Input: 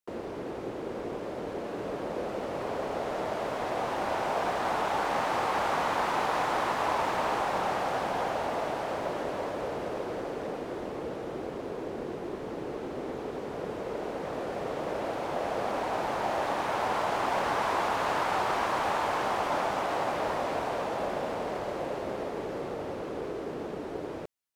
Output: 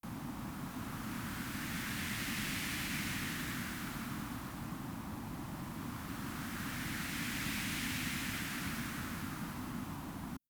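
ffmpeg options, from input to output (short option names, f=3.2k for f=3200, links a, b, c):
-filter_complex "[0:a]acrossover=split=4900[a][b];[b]acompressor=threshold=-55dB:ratio=4:attack=1:release=60[c];[a][c]amix=inputs=2:normalize=0,firequalizer=gain_entry='entry(110,0);entry(180,-26);entry(5500,-5)':delay=0.05:min_phase=1,asetrate=103194,aresample=44100,volume=10dB"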